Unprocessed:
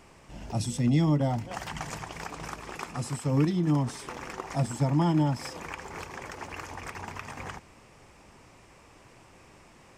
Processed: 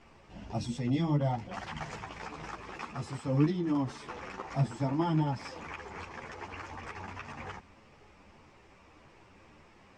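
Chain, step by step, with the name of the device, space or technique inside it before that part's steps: string-machine ensemble chorus (ensemble effect; LPF 4700 Hz 12 dB/oct)

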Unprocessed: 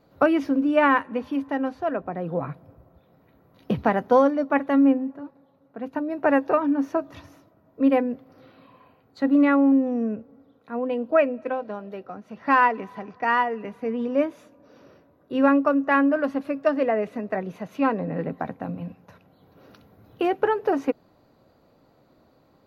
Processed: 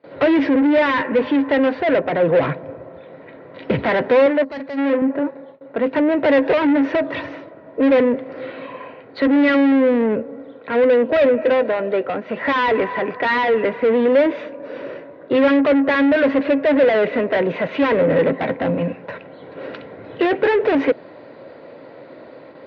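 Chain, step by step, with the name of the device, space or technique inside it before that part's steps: gate with hold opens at -52 dBFS; overdrive pedal into a guitar cabinet (overdrive pedal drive 33 dB, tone 1300 Hz, clips at -7 dBFS; speaker cabinet 100–3900 Hz, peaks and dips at 200 Hz -6 dB, 540 Hz +4 dB, 770 Hz -8 dB, 1200 Hz -9 dB, 2000 Hz +5 dB); 4.44–4.78 spectral gain 270–3900 Hz -13 dB; 4.26–5.02 tone controls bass -13 dB, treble -4 dB

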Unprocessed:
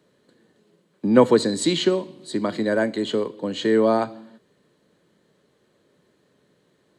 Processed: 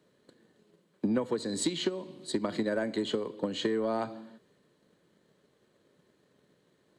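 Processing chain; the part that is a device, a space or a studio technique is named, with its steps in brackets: drum-bus smash (transient shaper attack +8 dB, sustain +2 dB; compressor 12:1, threshold -19 dBFS, peak gain reduction 16 dB; soft clip -12 dBFS, distortion -21 dB); gain -5.5 dB

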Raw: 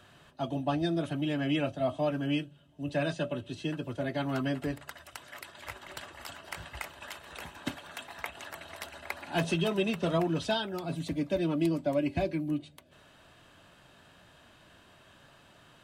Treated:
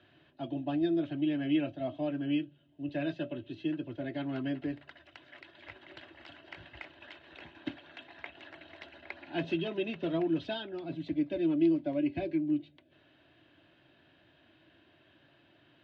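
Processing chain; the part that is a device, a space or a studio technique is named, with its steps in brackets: guitar cabinet (speaker cabinet 91–3700 Hz, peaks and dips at 190 Hz -8 dB, 320 Hz +10 dB, 470 Hz -5 dB, 870 Hz -5 dB, 1200 Hz -10 dB); gain -4.5 dB

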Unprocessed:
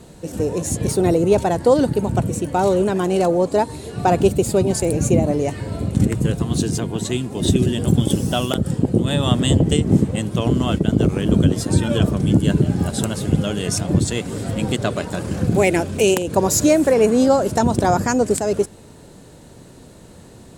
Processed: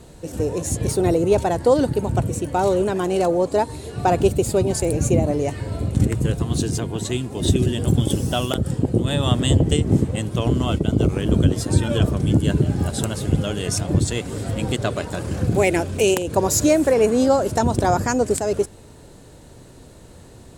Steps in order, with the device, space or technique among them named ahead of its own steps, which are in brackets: low shelf boost with a cut just above (low shelf 95 Hz +6 dB; bell 190 Hz -5 dB 0.74 oct); 10.65–11.1 notch 1700 Hz, Q 5.7; gain -1.5 dB

